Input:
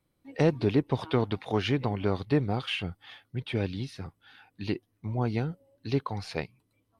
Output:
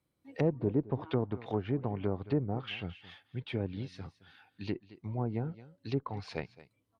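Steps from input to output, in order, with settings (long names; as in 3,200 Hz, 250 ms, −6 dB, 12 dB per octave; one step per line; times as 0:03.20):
on a send: single-tap delay 218 ms −18.5 dB
on the sum: treble cut that deepens with the level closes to 810 Hz, closed at −23 dBFS
high-pass filter 48 Hz
harmonic generator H 6 −38 dB, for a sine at −11.5 dBFS
level −5 dB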